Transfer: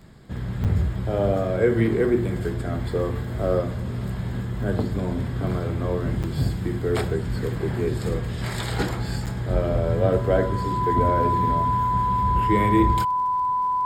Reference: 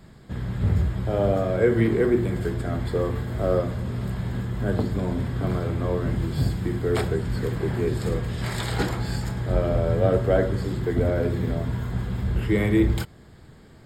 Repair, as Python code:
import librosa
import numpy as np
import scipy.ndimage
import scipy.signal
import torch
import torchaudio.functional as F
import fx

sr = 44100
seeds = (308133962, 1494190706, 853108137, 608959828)

y = fx.fix_declick_ar(x, sr, threshold=6.5)
y = fx.notch(y, sr, hz=1000.0, q=30.0)
y = fx.fix_interpolate(y, sr, at_s=(0.64, 6.23, 9.26), length_ms=7.5)